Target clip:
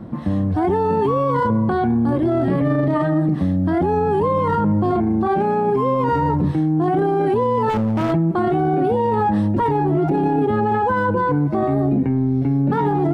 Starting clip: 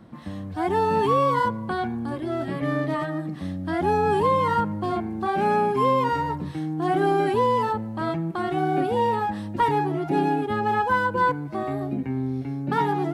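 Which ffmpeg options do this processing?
ffmpeg -i in.wav -filter_complex "[0:a]tiltshelf=frequency=1300:gain=7.5,alimiter=limit=-19dB:level=0:latency=1:release=10,asettb=1/sr,asplit=3[link_01][link_02][link_03];[link_01]atrim=end=7.694[link_04];[link_02]atrim=start=7.69:end=8.13,asetpts=PTS-STARTPTS,afade=type=in:duration=0.004:curve=qsin,afade=type=out:start_time=0.436:duration=0.004:curve=qsin,aeval=exprs='0.0841*(abs(mod(val(0)/0.0841+3,4)-2)-1)':channel_layout=same[link_05];[link_03]atrim=start=8.126[link_06];[link_04][link_05]acrossfade=duration=0.004:curve1=hsin:curve2=qsin[link_07];[link_07][link_06]acrossfade=duration=0.004:curve1=qsin:curve2=hsin,volume=7.5dB" out.wav

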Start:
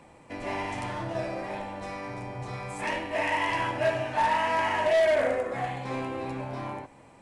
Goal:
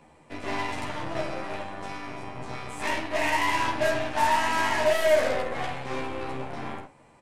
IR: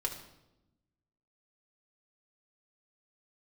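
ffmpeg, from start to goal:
-af "aeval=exprs='0.119*(cos(1*acos(clip(val(0)/0.119,-1,1)))-cos(1*PI/2))+0.00668*(cos(7*acos(clip(val(0)/0.119,-1,1)))-cos(7*PI/2))+0.0119*(cos(8*acos(clip(val(0)/0.119,-1,1)))-cos(8*PI/2))':channel_layout=same,aresample=32000,aresample=44100,aecho=1:1:13|50:0.708|0.299"

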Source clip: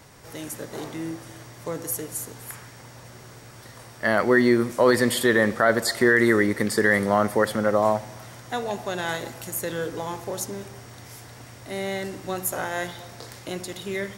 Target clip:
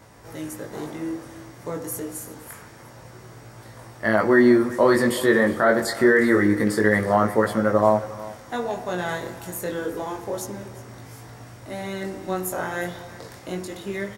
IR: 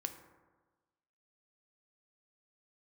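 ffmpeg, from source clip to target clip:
-filter_complex "[0:a]flanger=delay=18:depth=4.5:speed=0.27,aecho=1:1:360:0.126,asplit=2[link_01][link_02];[1:a]atrim=start_sample=2205,lowpass=2200[link_03];[link_02][link_03]afir=irnorm=-1:irlink=0,volume=-1dB[link_04];[link_01][link_04]amix=inputs=2:normalize=0"

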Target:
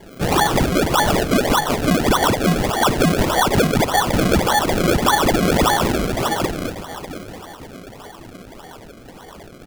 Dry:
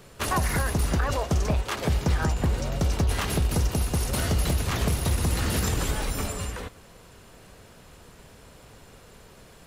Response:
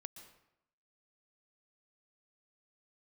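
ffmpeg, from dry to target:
-filter_complex "[0:a]highpass=frequency=76:width=0.5412,highpass=frequency=76:width=1.3066,lowpass=frequency=3000:width_type=q:width=0.5098,lowpass=frequency=3000:width_type=q:width=0.6013,lowpass=frequency=3000:width_type=q:width=0.9,lowpass=frequency=3000:width_type=q:width=2.563,afreqshift=-3500,lowshelf=frequency=540:width_type=q:width=1.5:gain=11.5,asplit=2[link_01][link_02];[link_02]aeval=exprs='0.0531*(abs(mod(val(0)/0.0531+3,4)-2)-1)':channel_layout=same,volume=-4dB[link_03];[link_01][link_03]amix=inputs=2:normalize=0,asplit=2[link_04][link_05];[link_05]adelay=12,volume=-3dB[link_06];[link_04][link_06]amix=inputs=2:normalize=0,aecho=1:1:716|1432|2148|2864:0.251|0.0929|0.0344|0.0127,asplit=2[link_07][link_08];[1:a]atrim=start_sample=2205[link_09];[link_08][link_09]afir=irnorm=-1:irlink=0,volume=4.5dB[link_10];[link_07][link_10]amix=inputs=2:normalize=0,acrusher=samples=33:mix=1:aa=0.000001:lfo=1:lforange=33:lforate=1.7"

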